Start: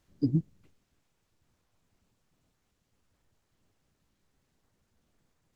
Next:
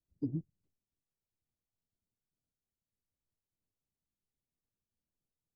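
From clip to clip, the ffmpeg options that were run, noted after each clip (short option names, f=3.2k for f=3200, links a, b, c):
-filter_complex "[0:a]afwtdn=0.00708,equalizer=f=1.9k:t=o:w=1.9:g=-13.5,acrossover=split=360[a][b];[a]alimiter=level_in=1.5dB:limit=-24dB:level=0:latency=1:release=327,volume=-1.5dB[c];[c][b]amix=inputs=2:normalize=0,volume=-3.5dB"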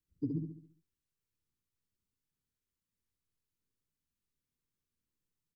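-af "asuperstop=centerf=690:order=4:qfactor=1.8,aecho=1:1:69|138|207|276|345|414:0.562|0.259|0.119|0.0547|0.0252|0.0116"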